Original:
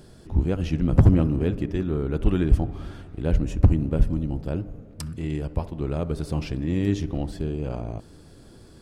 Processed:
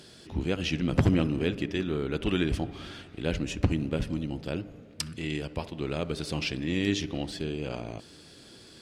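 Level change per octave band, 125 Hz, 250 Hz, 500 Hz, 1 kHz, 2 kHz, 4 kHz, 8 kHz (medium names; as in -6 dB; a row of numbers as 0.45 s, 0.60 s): -8.5 dB, -4.0 dB, -2.5 dB, -2.0 dB, +6.0 dB, +9.0 dB, +4.5 dB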